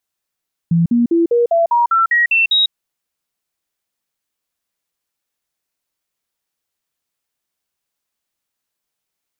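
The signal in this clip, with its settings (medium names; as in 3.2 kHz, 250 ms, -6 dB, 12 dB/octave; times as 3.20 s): stepped sine 168 Hz up, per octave 2, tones 10, 0.15 s, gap 0.05 s -10 dBFS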